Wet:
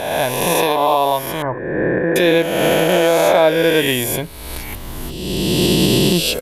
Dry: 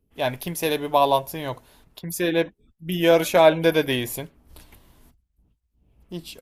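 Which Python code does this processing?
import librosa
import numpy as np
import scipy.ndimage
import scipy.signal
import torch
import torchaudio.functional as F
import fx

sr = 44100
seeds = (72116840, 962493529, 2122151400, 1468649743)

y = fx.spec_swells(x, sr, rise_s=2.41)
y = fx.recorder_agc(y, sr, target_db=-4.0, rise_db_per_s=19.0, max_gain_db=30)
y = fx.ellip_lowpass(y, sr, hz=1800.0, order=4, stop_db=80, at=(1.42, 2.16))
y = y * librosa.db_to_amplitude(-1.0)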